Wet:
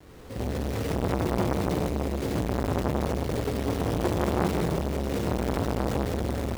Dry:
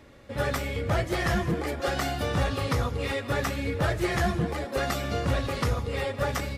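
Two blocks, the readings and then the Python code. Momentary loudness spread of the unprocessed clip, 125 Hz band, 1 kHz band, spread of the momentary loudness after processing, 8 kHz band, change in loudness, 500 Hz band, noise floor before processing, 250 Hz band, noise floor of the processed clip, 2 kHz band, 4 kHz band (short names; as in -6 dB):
3 LU, 0.0 dB, -1.5 dB, 3 LU, -2.0 dB, 0.0 dB, +0.5 dB, -40 dBFS, +4.0 dB, -37 dBFS, -7.5 dB, -5.0 dB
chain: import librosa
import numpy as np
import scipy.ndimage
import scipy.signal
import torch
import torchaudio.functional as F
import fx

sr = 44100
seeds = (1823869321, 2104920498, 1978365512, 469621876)

y = fx.self_delay(x, sr, depth_ms=0.06)
y = scipy.signal.sosfilt(scipy.signal.butter(12, 510.0, 'lowpass', fs=sr, output='sos'), y)
y = fx.quant_companded(y, sr, bits=4)
y = y + 10.0 ** (-4.5 / 20.0) * np.pad(y, (int(183 * sr / 1000.0), 0))[:len(y)]
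y = fx.rev_gated(y, sr, seeds[0], gate_ms=350, shape='flat', drr_db=-4.5)
y = fx.transformer_sat(y, sr, knee_hz=1000.0)
y = y * 10.0 ** (1.0 / 20.0)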